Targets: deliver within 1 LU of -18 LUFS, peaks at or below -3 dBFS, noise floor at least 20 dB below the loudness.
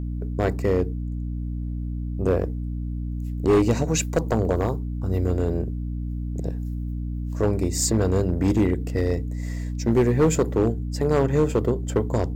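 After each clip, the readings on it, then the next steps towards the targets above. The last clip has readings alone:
clipped samples 1.3%; clipping level -13.0 dBFS; hum 60 Hz; highest harmonic 300 Hz; hum level -26 dBFS; loudness -24.5 LUFS; peak level -13.0 dBFS; loudness target -18.0 LUFS
-> clip repair -13 dBFS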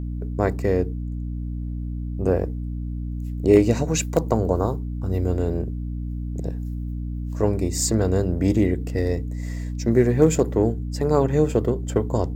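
clipped samples 0.0%; hum 60 Hz; highest harmonic 300 Hz; hum level -26 dBFS
-> hum notches 60/120/180/240/300 Hz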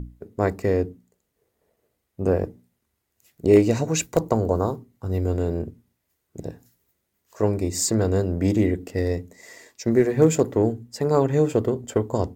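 hum not found; loudness -23.0 LUFS; peak level -5.0 dBFS; loudness target -18.0 LUFS
-> trim +5 dB; peak limiter -3 dBFS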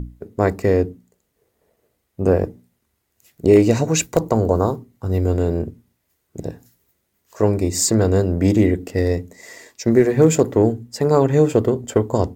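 loudness -18.5 LUFS; peak level -3.0 dBFS; noise floor -72 dBFS

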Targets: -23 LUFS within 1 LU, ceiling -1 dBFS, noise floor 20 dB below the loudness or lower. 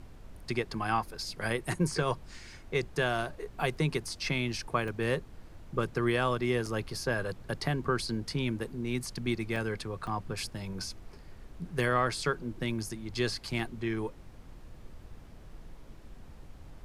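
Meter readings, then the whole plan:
dropouts 6; longest dropout 3.2 ms; noise floor -51 dBFS; noise floor target -53 dBFS; loudness -33.0 LUFS; peak level -13.5 dBFS; loudness target -23.0 LUFS
-> interpolate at 1.94/4.88/6.66/9.56/10.07/13.59 s, 3.2 ms; noise print and reduce 6 dB; trim +10 dB

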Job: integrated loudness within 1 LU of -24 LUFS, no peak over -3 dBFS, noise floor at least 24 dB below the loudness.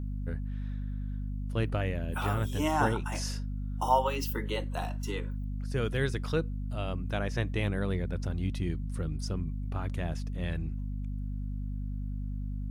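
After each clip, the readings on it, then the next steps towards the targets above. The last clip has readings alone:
hum 50 Hz; highest harmonic 250 Hz; hum level -32 dBFS; loudness -33.5 LUFS; peak level -12.0 dBFS; loudness target -24.0 LUFS
-> hum notches 50/100/150/200/250 Hz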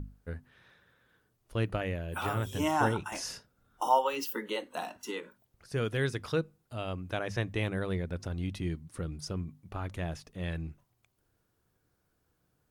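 hum not found; loudness -34.0 LUFS; peak level -12.0 dBFS; loudness target -24.0 LUFS
-> trim +10 dB; peak limiter -3 dBFS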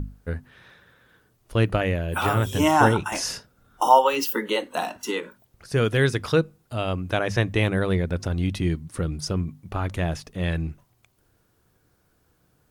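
loudness -24.0 LUFS; peak level -3.0 dBFS; noise floor -66 dBFS

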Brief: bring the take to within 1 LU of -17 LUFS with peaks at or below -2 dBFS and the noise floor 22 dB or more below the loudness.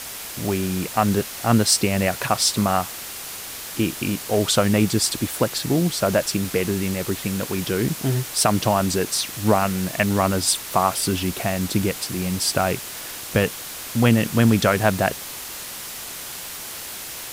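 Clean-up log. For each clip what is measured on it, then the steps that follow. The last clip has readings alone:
noise floor -34 dBFS; noise floor target -44 dBFS; loudness -22.0 LUFS; peak level -3.5 dBFS; loudness target -17.0 LUFS
-> noise reduction 10 dB, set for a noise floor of -34 dBFS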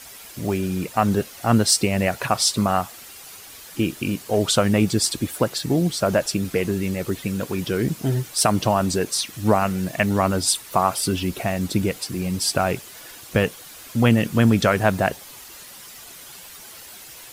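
noise floor -42 dBFS; noise floor target -44 dBFS
-> noise reduction 6 dB, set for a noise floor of -42 dBFS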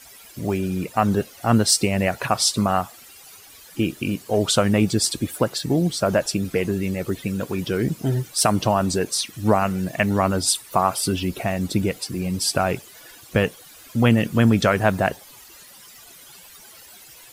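noise floor -46 dBFS; loudness -22.0 LUFS; peak level -3.5 dBFS; loudness target -17.0 LUFS
-> trim +5 dB; peak limiter -2 dBFS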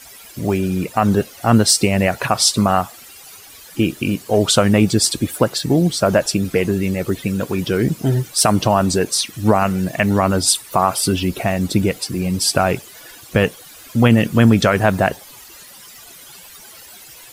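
loudness -17.0 LUFS; peak level -2.0 dBFS; noise floor -41 dBFS

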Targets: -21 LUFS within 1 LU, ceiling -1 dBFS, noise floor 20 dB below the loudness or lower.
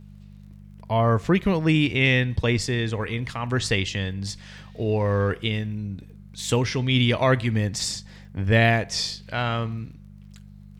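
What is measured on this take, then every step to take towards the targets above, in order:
tick rate 21 per s; hum 50 Hz; highest harmonic 200 Hz; hum level -41 dBFS; loudness -23.5 LUFS; peak level -6.5 dBFS; loudness target -21.0 LUFS
-> de-click; de-hum 50 Hz, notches 4; trim +2.5 dB

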